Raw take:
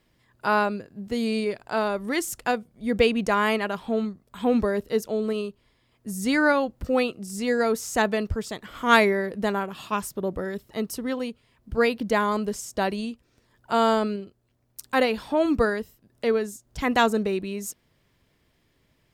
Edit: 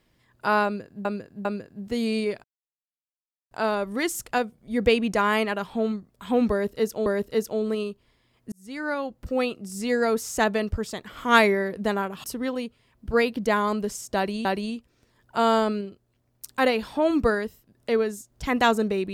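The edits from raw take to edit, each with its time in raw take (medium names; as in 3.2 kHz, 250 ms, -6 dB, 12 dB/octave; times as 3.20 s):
0.65–1.05 s: loop, 3 plays
1.64 s: insert silence 1.07 s
4.64–5.19 s: loop, 2 plays
6.10–7.64 s: fade in equal-power
9.82–10.88 s: delete
12.80–13.09 s: loop, 2 plays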